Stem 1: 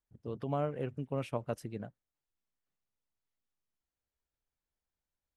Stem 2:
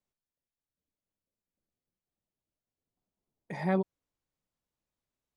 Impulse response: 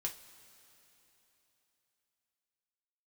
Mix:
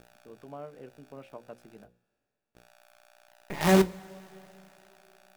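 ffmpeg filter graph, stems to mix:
-filter_complex "[0:a]highpass=200,highshelf=frequency=4600:gain=-10.5,volume=-8.5dB,asplit=3[link_01][link_02][link_03];[link_02]volume=-19dB[link_04];[1:a]aeval=exprs='val(0)+0.00141*(sin(2*PI*60*n/s)+sin(2*PI*2*60*n/s)/2+sin(2*PI*3*60*n/s)/3+sin(2*PI*4*60*n/s)/4+sin(2*PI*5*60*n/s)/5)':channel_layout=same,acrusher=bits=6:dc=4:mix=0:aa=0.000001,volume=3dB,asplit=3[link_05][link_06][link_07];[link_05]atrim=end=1.85,asetpts=PTS-STARTPTS,afade=type=out:start_time=1.846:duration=0.004:curve=hsin[link_08];[link_06]atrim=start=1.85:end=2.55,asetpts=PTS-STARTPTS,volume=0[link_09];[link_07]atrim=start=2.55,asetpts=PTS-STARTPTS,afade=type=in:duration=0.004:curve=hsin[link_10];[link_08][link_09][link_10]concat=n=3:v=0:a=1,asplit=2[link_11][link_12];[link_12]volume=-4dB[link_13];[link_03]apad=whole_len=236712[link_14];[link_11][link_14]sidechaincompress=threshold=-53dB:ratio=8:attack=38:release=159[link_15];[2:a]atrim=start_sample=2205[link_16];[link_04][link_13]amix=inputs=2:normalize=0[link_17];[link_17][link_16]afir=irnorm=-1:irlink=0[link_18];[link_01][link_15][link_18]amix=inputs=3:normalize=0,bandreject=frequency=60:width_type=h:width=6,bandreject=frequency=120:width_type=h:width=6,bandreject=frequency=180:width_type=h:width=6,bandreject=frequency=240:width_type=h:width=6,bandreject=frequency=300:width_type=h:width=6,bandreject=frequency=360:width_type=h:width=6,bandreject=frequency=420:width_type=h:width=6,bandreject=frequency=480:width_type=h:width=6,bandreject=frequency=540:width_type=h:width=6"

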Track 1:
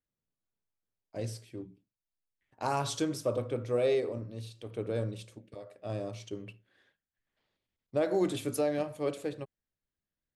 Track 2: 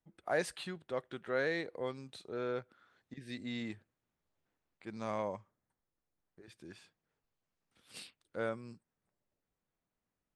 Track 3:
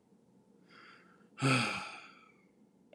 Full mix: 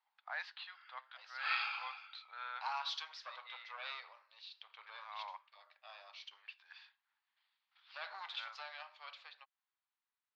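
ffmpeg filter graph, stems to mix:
ffmpeg -i stem1.wav -i stem2.wav -i stem3.wav -filter_complex "[0:a]equalizer=frequency=830:width=0.39:gain=-6.5,asoftclip=type=tanh:threshold=-29dB,volume=-2dB,asplit=2[link_01][link_02];[1:a]flanger=delay=3.8:depth=3.9:regen=85:speed=0.52:shape=sinusoidal,volume=1.5dB[link_03];[2:a]volume=-5.5dB[link_04];[link_02]apad=whole_len=456605[link_05];[link_03][link_05]sidechaincompress=threshold=-51dB:ratio=3:attack=43:release=231[link_06];[link_01][link_06][link_04]amix=inputs=3:normalize=0,dynaudnorm=framelen=550:gausssize=7:maxgain=5.5dB,asuperpass=centerf=2000:order=12:qfactor=0.52" out.wav

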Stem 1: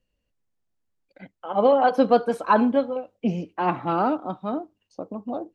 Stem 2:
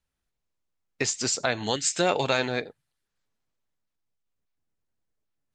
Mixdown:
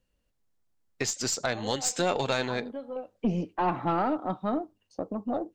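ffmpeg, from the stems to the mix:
ffmpeg -i stem1.wav -i stem2.wav -filter_complex "[0:a]acompressor=threshold=-22dB:ratio=5,volume=1.5dB[link_01];[1:a]volume=-1.5dB,asplit=2[link_02][link_03];[link_03]apad=whole_len=244463[link_04];[link_01][link_04]sidechaincompress=threshold=-41dB:ratio=6:attack=16:release=481[link_05];[link_05][link_02]amix=inputs=2:normalize=0,equalizer=frequency=2500:width_type=o:width=0.77:gain=-2.5,aeval=exprs='(tanh(6.31*val(0)+0.3)-tanh(0.3))/6.31':channel_layout=same" out.wav

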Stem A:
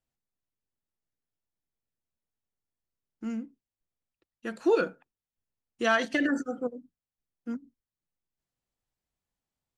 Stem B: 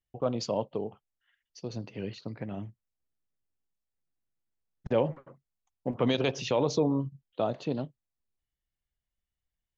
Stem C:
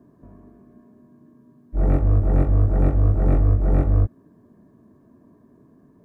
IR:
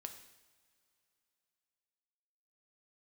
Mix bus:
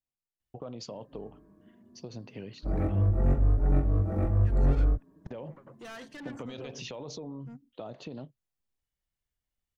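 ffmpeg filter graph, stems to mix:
-filter_complex "[0:a]asoftclip=type=tanh:threshold=-31dB,volume=-10.5dB[link_01];[1:a]alimiter=level_in=1dB:limit=-24dB:level=0:latency=1:release=18,volume=-1dB,acompressor=threshold=-37dB:ratio=6,adelay=400,volume=-0.5dB[link_02];[2:a]asplit=2[link_03][link_04];[link_04]adelay=5.3,afreqshift=0.81[link_05];[link_03][link_05]amix=inputs=2:normalize=1,adelay=900,volume=-4dB[link_06];[link_01][link_02][link_06]amix=inputs=3:normalize=0"

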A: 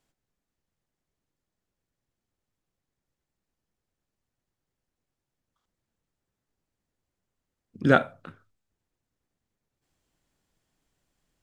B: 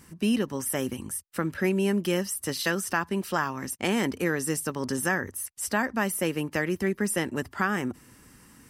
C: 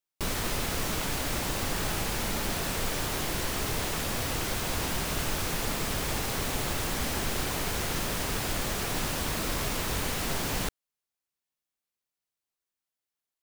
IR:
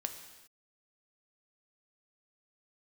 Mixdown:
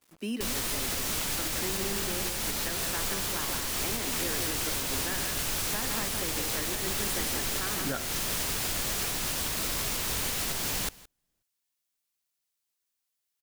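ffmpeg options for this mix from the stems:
-filter_complex "[0:a]volume=-7dB[link_01];[1:a]highpass=frequency=210:width=0.5412,highpass=frequency=210:width=1.3066,acrusher=bits=7:mix=0:aa=0.000001,volume=-7.5dB,asplit=2[link_02][link_03];[link_03]volume=-5dB[link_04];[2:a]highshelf=frequency=2400:gain=9.5,adelay=200,volume=-1.5dB,asplit=2[link_05][link_06];[link_06]volume=-22.5dB[link_07];[link_04][link_07]amix=inputs=2:normalize=0,aecho=0:1:168:1[link_08];[link_01][link_02][link_05][link_08]amix=inputs=4:normalize=0,alimiter=limit=-20dB:level=0:latency=1:release=372"

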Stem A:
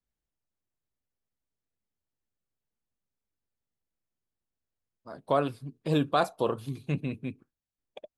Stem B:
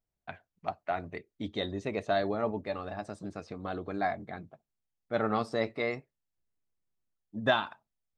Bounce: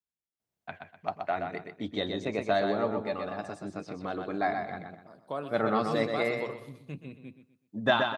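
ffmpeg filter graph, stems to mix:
ffmpeg -i stem1.wav -i stem2.wav -filter_complex "[0:a]volume=-10dB,asplit=2[link_01][link_02];[link_02]volume=-11.5dB[link_03];[1:a]adelay=400,volume=1.5dB,asplit=2[link_04][link_05];[link_05]volume=-5.5dB[link_06];[link_03][link_06]amix=inputs=2:normalize=0,aecho=0:1:125|250|375|500|625:1|0.32|0.102|0.0328|0.0105[link_07];[link_01][link_04][link_07]amix=inputs=3:normalize=0,highpass=110" out.wav

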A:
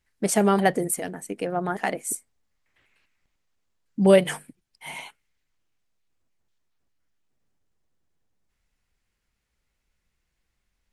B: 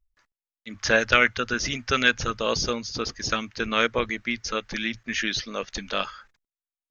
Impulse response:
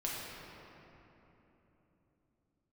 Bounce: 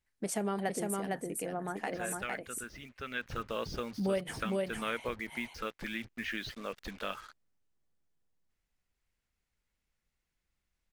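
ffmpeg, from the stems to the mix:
-filter_complex "[0:a]volume=-8.5dB,asplit=2[link_01][link_02];[link_02]volume=-3.5dB[link_03];[1:a]lowpass=2900,acrusher=bits=6:mix=0:aa=0.5,adelay=1100,volume=-7.5dB,afade=type=in:start_time=3.11:duration=0.31:silence=0.298538[link_04];[link_03]aecho=0:1:457:1[link_05];[link_01][link_04][link_05]amix=inputs=3:normalize=0,acompressor=threshold=-34dB:ratio=2"

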